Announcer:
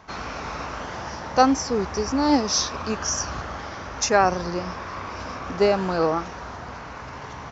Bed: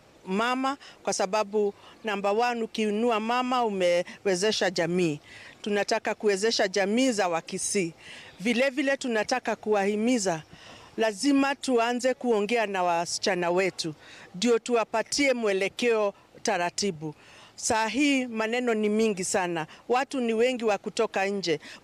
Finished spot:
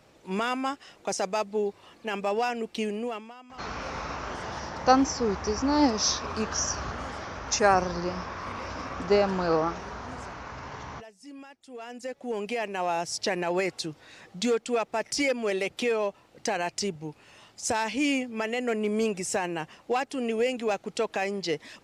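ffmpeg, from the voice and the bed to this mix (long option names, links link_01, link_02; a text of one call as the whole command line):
ffmpeg -i stem1.wav -i stem2.wav -filter_complex "[0:a]adelay=3500,volume=-3dB[link_01];[1:a]volume=17.5dB,afade=type=out:start_time=2.79:duration=0.55:silence=0.1,afade=type=in:start_time=11.68:duration=1.29:silence=0.1[link_02];[link_01][link_02]amix=inputs=2:normalize=0" out.wav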